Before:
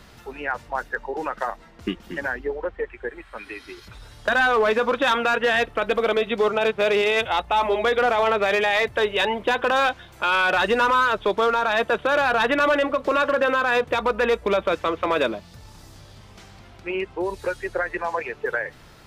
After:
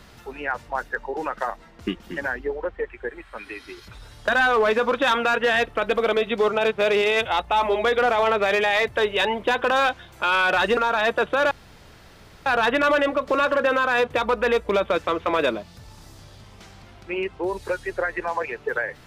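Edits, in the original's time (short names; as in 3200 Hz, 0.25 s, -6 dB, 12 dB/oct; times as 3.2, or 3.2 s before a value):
10.77–11.49 cut
12.23 insert room tone 0.95 s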